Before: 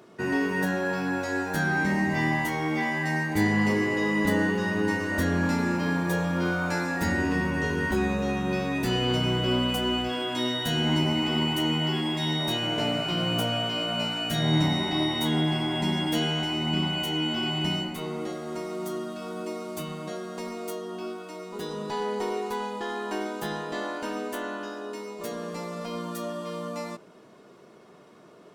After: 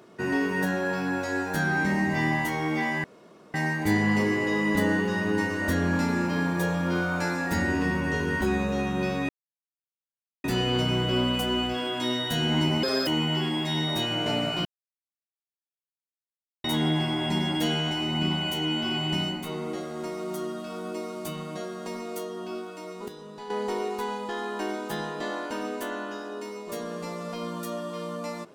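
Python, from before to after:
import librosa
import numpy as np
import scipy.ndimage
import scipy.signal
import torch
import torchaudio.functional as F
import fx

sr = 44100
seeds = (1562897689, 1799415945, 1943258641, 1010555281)

y = fx.edit(x, sr, fx.insert_room_tone(at_s=3.04, length_s=0.5),
    fx.insert_silence(at_s=8.79, length_s=1.15),
    fx.speed_span(start_s=11.18, length_s=0.41, speed=1.7),
    fx.silence(start_s=13.17, length_s=1.99),
    fx.clip_gain(start_s=21.6, length_s=0.42, db=-9.5), tone=tone)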